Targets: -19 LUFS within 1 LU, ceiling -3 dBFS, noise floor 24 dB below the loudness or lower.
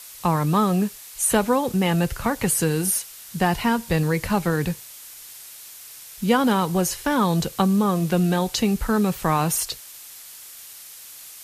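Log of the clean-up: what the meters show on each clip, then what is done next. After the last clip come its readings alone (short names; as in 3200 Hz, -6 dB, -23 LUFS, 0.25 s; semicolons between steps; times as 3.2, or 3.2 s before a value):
noise floor -42 dBFS; noise floor target -46 dBFS; loudness -22.0 LUFS; peak -4.5 dBFS; loudness target -19.0 LUFS
-> denoiser 6 dB, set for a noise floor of -42 dBFS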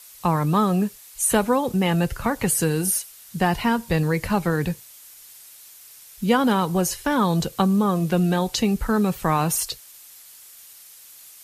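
noise floor -46 dBFS; loudness -22.0 LUFS; peak -4.5 dBFS; loudness target -19.0 LUFS
-> gain +3 dB; limiter -3 dBFS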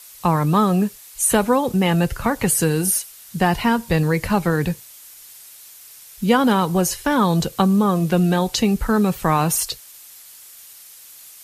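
loudness -19.0 LUFS; peak -3.0 dBFS; noise floor -43 dBFS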